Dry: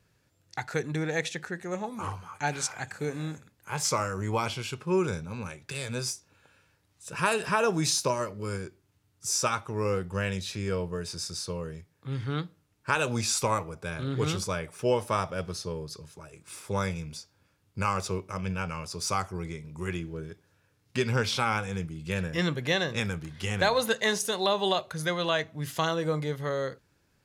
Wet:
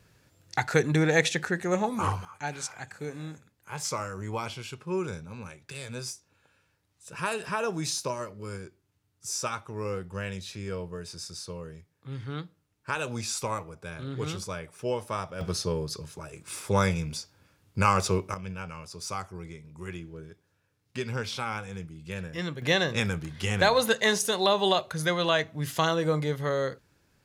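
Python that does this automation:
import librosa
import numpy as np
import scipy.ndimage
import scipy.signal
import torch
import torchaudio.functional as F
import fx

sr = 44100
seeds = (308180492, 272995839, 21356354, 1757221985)

y = fx.gain(x, sr, db=fx.steps((0.0, 7.0), (2.25, -4.5), (15.41, 5.5), (18.34, -5.5), (22.62, 2.5)))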